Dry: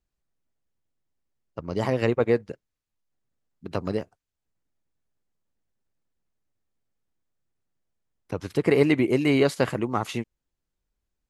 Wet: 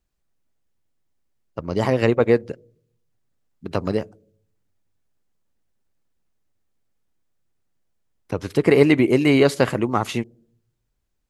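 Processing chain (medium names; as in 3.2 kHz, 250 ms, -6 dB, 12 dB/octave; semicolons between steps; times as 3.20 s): on a send: inverse Chebyshev band-stop 1.6–5.9 kHz, stop band 60 dB + reverberation RT60 0.65 s, pre-delay 3 ms, DRR 30.5 dB; on the sum: trim +5 dB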